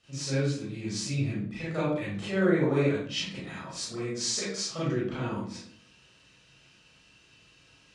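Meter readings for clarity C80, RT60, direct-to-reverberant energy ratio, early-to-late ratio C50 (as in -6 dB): 5.0 dB, 0.60 s, -10.0 dB, 0.0 dB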